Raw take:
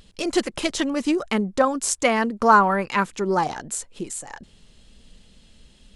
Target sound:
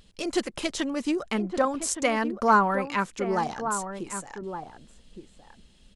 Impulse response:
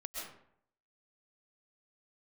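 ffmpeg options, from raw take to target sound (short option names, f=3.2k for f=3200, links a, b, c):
-filter_complex "[0:a]asplit=2[a][b];[b]adelay=1166,volume=-8dB,highshelf=f=4k:g=-26.2[c];[a][c]amix=inputs=2:normalize=0,volume=-5dB"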